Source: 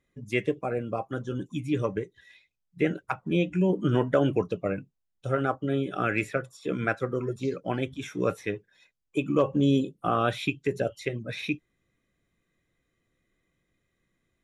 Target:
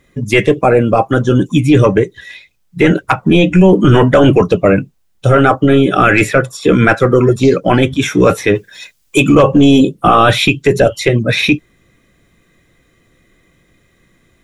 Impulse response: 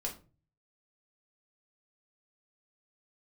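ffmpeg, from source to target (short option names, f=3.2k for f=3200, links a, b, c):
-filter_complex "[0:a]asettb=1/sr,asplit=3[a][b][c];[a]atrim=end=8.554[d];[b]atrim=start=8.55:end=9.35,asetpts=PTS-STARTPTS,afade=t=in:d=0.004:c=qsin,afade=t=out:st=0.796:d=0.004:c=qsin,highshelf=f=2.5k:g=11[e];[c]atrim=start=9.346[f];[d][e]acrossfade=d=0.004:c1=hsin:c2=qsin[g];[g][f]acrossfade=d=0.004:c1=qsin:c2=hsin,apsyclip=24dB,volume=-2dB"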